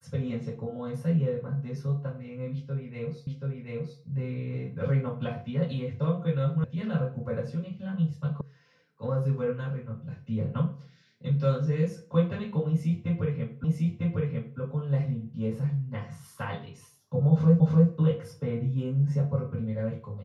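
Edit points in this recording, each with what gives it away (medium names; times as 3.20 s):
3.27 s: repeat of the last 0.73 s
6.64 s: sound stops dead
8.41 s: sound stops dead
13.64 s: repeat of the last 0.95 s
17.60 s: repeat of the last 0.3 s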